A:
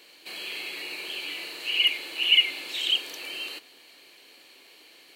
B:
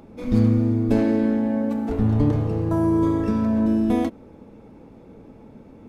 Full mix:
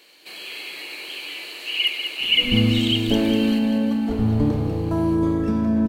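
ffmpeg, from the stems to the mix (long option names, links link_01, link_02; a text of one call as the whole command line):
ffmpeg -i stem1.wav -i stem2.wav -filter_complex "[0:a]volume=0.5dB,asplit=2[link_01][link_02];[link_02]volume=-7dB[link_03];[1:a]adelay=2200,volume=-1dB,asplit=2[link_04][link_05];[link_05]volume=-11dB[link_06];[link_03][link_06]amix=inputs=2:normalize=0,aecho=0:1:195|390|585|780|975|1170|1365|1560:1|0.54|0.292|0.157|0.085|0.0459|0.0248|0.0134[link_07];[link_01][link_04][link_07]amix=inputs=3:normalize=0" out.wav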